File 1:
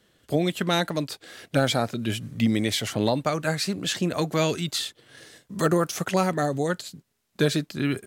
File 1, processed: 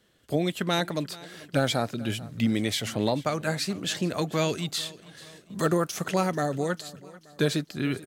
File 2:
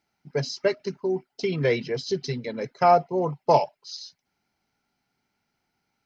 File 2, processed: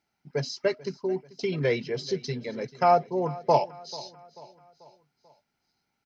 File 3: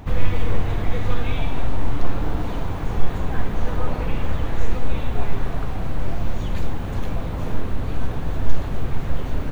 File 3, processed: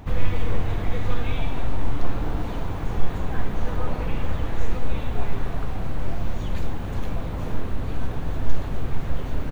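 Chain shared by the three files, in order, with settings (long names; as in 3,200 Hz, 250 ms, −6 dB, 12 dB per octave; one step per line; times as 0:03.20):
repeating echo 439 ms, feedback 49%, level −20 dB
level −2.5 dB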